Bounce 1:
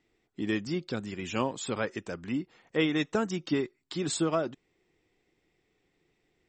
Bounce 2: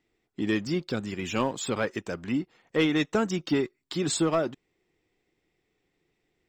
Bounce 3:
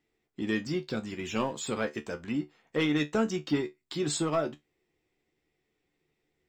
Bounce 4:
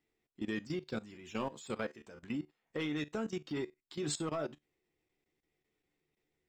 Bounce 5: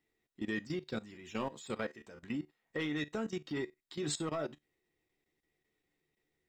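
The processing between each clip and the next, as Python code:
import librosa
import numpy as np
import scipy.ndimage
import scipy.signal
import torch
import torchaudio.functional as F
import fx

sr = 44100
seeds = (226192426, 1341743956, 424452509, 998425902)

y1 = fx.leveller(x, sr, passes=1)
y2 = fx.comb_fb(y1, sr, f0_hz=74.0, decay_s=0.17, harmonics='all', damping=0.0, mix_pct=80)
y2 = y2 * 10.0 ** (1.5 / 20.0)
y3 = fx.level_steps(y2, sr, step_db=16)
y3 = y3 * 10.0 ** (-3.5 / 20.0)
y4 = fx.small_body(y3, sr, hz=(1900.0, 3800.0), ring_ms=45, db=10)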